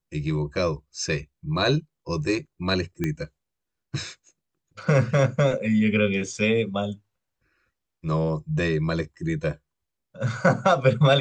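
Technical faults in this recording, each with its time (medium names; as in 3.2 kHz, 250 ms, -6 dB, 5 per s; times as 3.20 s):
3.04 s: pop -13 dBFS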